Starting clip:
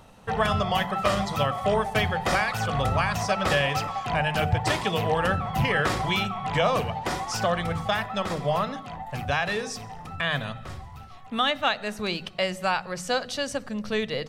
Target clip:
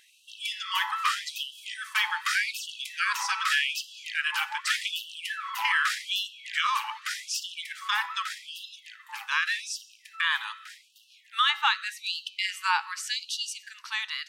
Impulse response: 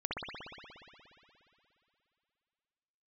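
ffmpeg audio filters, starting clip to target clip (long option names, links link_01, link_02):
-af "bandreject=frequency=188.7:width_type=h:width=4,bandreject=frequency=377.4:width_type=h:width=4,bandreject=frequency=566.1:width_type=h:width=4,bandreject=frequency=754.8:width_type=h:width=4,bandreject=frequency=943.5:width_type=h:width=4,bandreject=frequency=1132.2:width_type=h:width=4,bandreject=frequency=1320.9:width_type=h:width=4,bandreject=frequency=1509.6:width_type=h:width=4,bandreject=frequency=1698.3:width_type=h:width=4,bandreject=frequency=1887:width_type=h:width=4,bandreject=frequency=2075.7:width_type=h:width=4,bandreject=frequency=2264.4:width_type=h:width=4,bandreject=frequency=2453.1:width_type=h:width=4,bandreject=frequency=2641.8:width_type=h:width=4,bandreject=frequency=2830.5:width_type=h:width=4,bandreject=frequency=3019.2:width_type=h:width=4,bandreject=frequency=3207.9:width_type=h:width=4,bandreject=frequency=3396.6:width_type=h:width=4,bandreject=frequency=3585.3:width_type=h:width=4,bandreject=frequency=3774:width_type=h:width=4,bandreject=frequency=3962.7:width_type=h:width=4,bandreject=frequency=4151.4:width_type=h:width=4,bandreject=frequency=4340.1:width_type=h:width=4,bandreject=frequency=4528.8:width_type=h:width=4,bandreject=frequency=4717.5:width_type=h:width=4,bandreject=frequency=4906.2:width_type=h:width=4,bandreject=frequency=5094.9:width_type=h:width=4,bandreject=frequency=5283.6:width_type=h:width=4,bandreject=frequency=5472.3:width_type=h:width=4,bandreject=frequency=5661:width_type=h:width=4,bandreject=frequency=5849.7:width_type=h:width=4,bandreject=frequency=6038.4:width_type=h:width=4,bandreject=frequency=6227.1:width_type=h:width=4,bandreject=frequency=6415.8:width_type=h:width=4,bandreject=frequency=6604.5:width_type=h:width=4,bandreject=frequency=6793.2:width_type=h:width=4,bandreject=frequency=6981.9:width_type=h:width=4,afftfilt=real='re*gte(b*sr/1024,790*pow(2700/790,0.5+0.5*sin(2*PI*0.84*pts/sr)))':imag='im*gte(b*sr/1024,790*pow(2700/790,0.5+0.5*sin(2*PI*0.84*pts/sr)))':win_size=1024:overlap=0.75,volume=2dB"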